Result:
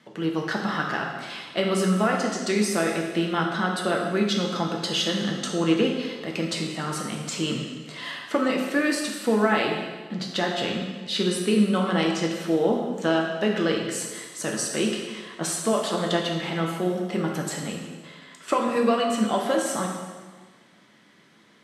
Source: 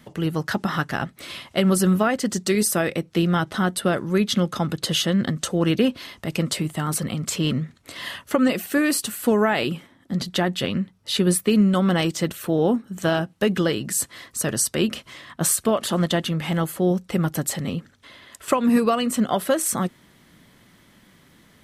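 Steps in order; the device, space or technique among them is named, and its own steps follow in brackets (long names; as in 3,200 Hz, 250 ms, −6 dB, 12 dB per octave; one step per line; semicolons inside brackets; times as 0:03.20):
supermarket ceiling speaker (band-pass filter 220–6,500 Hz; convolution reverb RT60 1.4 s, pre-delay 4 ms, DRR −0.5 dB)
level −3.5 dB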